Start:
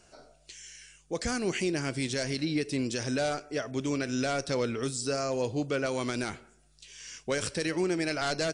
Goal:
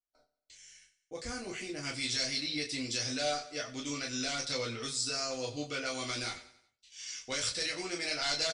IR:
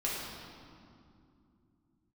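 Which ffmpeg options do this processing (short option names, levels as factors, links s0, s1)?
-filter_complex "[0:a]agate=range=0.0158:threshold=0.00355:ratio=16:detection=peak,asetnsamples=n=441:p=0,asendcmd='1.83 equalizer g 14',equalizer=f=4500:w=0.45:g=3,aecho=1:1:92|184|276|368:0.158|0.0745|0.035|0.0165[s0];[1:a]atrim=start_sample=2205,atrim=end_sample=3528,asetrate=79380,aresample=44100[s1];[s0][s1]afir=irnorm=-1:irlink=0,volume=0.422"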